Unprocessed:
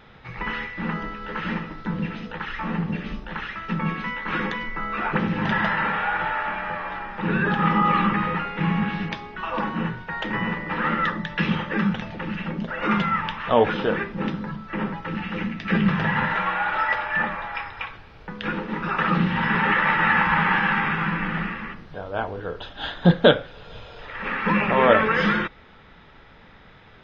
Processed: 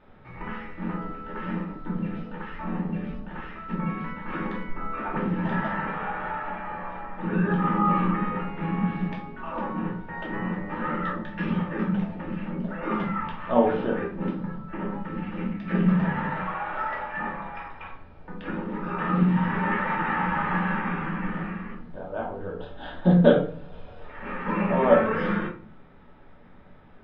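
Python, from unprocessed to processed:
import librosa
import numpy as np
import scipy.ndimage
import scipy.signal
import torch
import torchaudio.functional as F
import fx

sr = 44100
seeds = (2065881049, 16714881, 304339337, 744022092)

y = fx.lowpass(x, sr, hz=1200.0, slope=6)
y = fx.peak_eq(y, sr, hz=490.0, db=3.0, octaves=1.9)
y = fx.room_shoebox(y, sr, seeds[0], volume_m3=330.0, walls='furnished', distance_m=2.6)
y = y * librosa.db_to_amplitude(-9.0)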